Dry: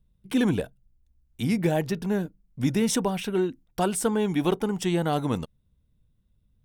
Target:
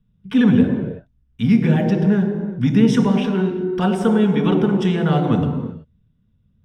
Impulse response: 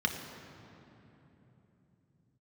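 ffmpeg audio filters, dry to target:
-filter_complex "[0:a]lowpass=f=2000:p=1[s0];[1:a]atrim=start_sample=2205,afade=t=out:st=0.44:d=0.01,atrim=end_sample=19845[s1];[s0][s1]afir=irnorm=-1:irlink=0"

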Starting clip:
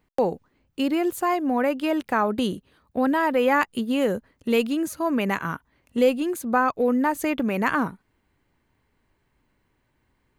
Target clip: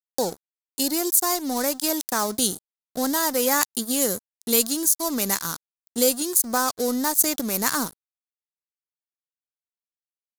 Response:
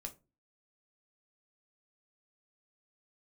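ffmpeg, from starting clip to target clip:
-af "aeval=exprs='sgn(val(0))*max(abs(val(0))-0.0126,0)':c=same,aexciter=amount=12.4:drive=7:freq=4100,volume=0.75"

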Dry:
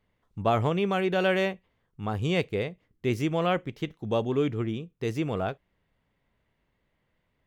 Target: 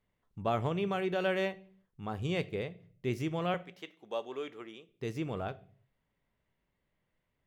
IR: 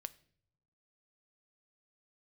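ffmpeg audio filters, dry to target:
-filter_complex "[0:a]asettb=1/sr,asplit=3[s0][s1][s2];[s0]atrim=end=3.544[s3];[s1]atrim=start=3.54:end=4.89,asetpts=PTS-STARTPTS,afade=t=in:d=0.004:c=qsin,afade=t=out:st=1.346:d=0.004:c=qsin,highpass=540[s4];[s2]atrim=start=4.886[s5];[s3][s4]acrossfade=d=0.004:c1=hsin:c2=qsin[s6];[s6][s5]acrossfade=d=0.004:c1=qsin:c2=hsin[s7];[1:a]atrim=start_sample=2205,afade=t=out:st=0.45:d=0.01,atrim=end_sample=20286,asetrate=48510,aresample=44100[s8];[s7][s8]afir=irnorm=-1:irlink=0,volume=0.794"

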